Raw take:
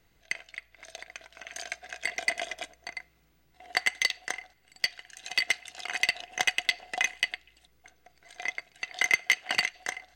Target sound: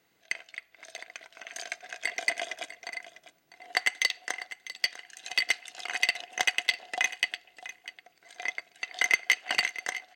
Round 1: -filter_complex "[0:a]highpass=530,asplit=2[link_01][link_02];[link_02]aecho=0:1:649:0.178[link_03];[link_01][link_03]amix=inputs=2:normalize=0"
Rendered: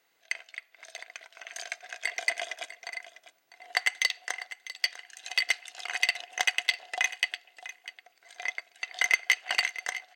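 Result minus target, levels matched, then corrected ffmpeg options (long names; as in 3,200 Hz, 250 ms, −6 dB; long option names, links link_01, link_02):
250 Hz band −9.0 dB
-filter_complex "[0:a]highpass=220,asplit=2[link_01][link_02];[link_02]aecho=0:1:649:0.178[link_03];[link_01][link_03]amix=inputs=2:normalize=0"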